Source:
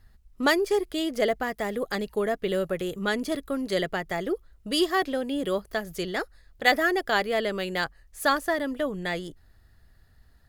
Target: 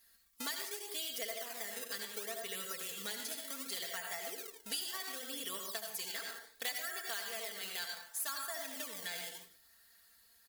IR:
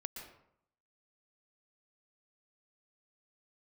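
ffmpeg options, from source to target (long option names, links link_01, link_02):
-filter_complex "[1:a]atrim=start_sample=2205,asetrate=70560,aresample=44100[link_01];[0:a][link_01]afir=irnorm=-1:irlink=0,asplit=2[link_02][link_03];[link_03]acrusher=samples=22:mix=1:aa=0.000001:lfo=1:lforange=35.2:lforate=0.68,volume=-6dB[link_04];[link_02][link_04]amix=inputs=2:normalize=0,aderivative,aecho=1:1:4.4:0.75,acompressor=threshold=-51dB:ratio=6,volume=13.5dB"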